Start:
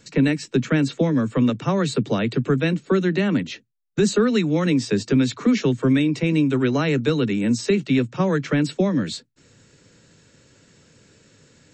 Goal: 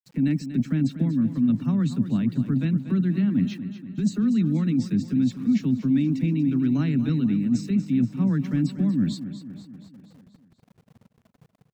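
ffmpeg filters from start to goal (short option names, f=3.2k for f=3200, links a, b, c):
-af "afftfilt=real='re*gte(hypot(re,im),0.0141)':imag='im*gte(hypot(re,im),0.0141)':win_size=1024:overlap=0.75,lowshelf=f=330:t=q:w=3:g=10.5,areverse,acompressor=threshold=-12dB:ratio=6,areverse,aeval=exprs='val(0)*gte(abs(val(0)),0.00562)':c=same,aecho=1:1:239|478|717|956|1195|1434:0.251|0.143|0.0816|0.0465|0.0265|0.0151,volume=-8dB"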